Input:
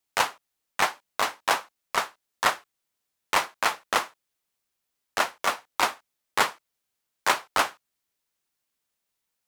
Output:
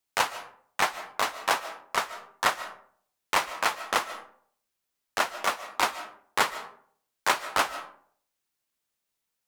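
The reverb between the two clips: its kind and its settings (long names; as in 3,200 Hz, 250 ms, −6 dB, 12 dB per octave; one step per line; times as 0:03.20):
comb and all-pass reverb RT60 0.57 s, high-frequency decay 0.5×, pre-delay 105 ms, DRR 13 dB
level −1.5 dB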